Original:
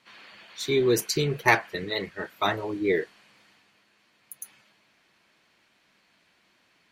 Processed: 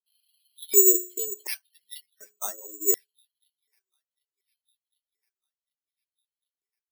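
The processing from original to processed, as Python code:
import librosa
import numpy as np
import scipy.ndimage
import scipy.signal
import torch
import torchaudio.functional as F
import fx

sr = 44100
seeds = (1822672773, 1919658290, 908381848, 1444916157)

y = fx.bin_expand(x, sr, power=2.0)
y = scipy.signal.sosfilt(scipy.signal.butter(4, 170.0, 'highpass', fs=sr, output='sos'), y)
y = fx.hum_notches(y, sr, base_hz=60, count=7)
y = y + 0.54 * np.pad(y, (int(5.2 * sr / 1000.0), 0))[:len(y)]
y = fx.echo_wet_highpass(y, sr, ms=750, feedback_pct=62, hz=5500.0, wet_db=-19.0)
y = fx.filter_lfo_highpass(y, sr, shape='square', hz=0.68, low_hz=390.0, high_hz=3400.0, q=3.3)
y = (np.kron(scipy.signal.resample_poly(y, 1, 6), np.eye(6)[0]) * 6)[:len(y)]
y = y * librosa.db_to_amplitude(-12.5)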